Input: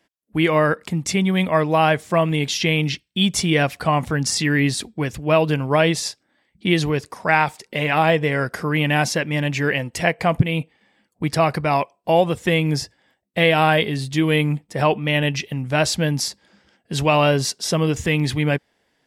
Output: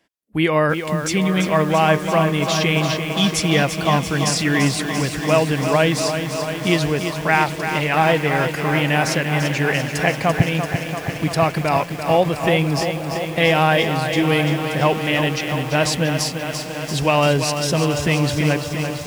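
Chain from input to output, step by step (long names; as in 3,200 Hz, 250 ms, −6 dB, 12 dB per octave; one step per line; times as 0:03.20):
feedback delay with all-pass diffusion 820 ms, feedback 65%, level −15.5 dB
feedback echo at a low word length 340 ms, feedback 80%, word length 6 bits, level −7.5 dB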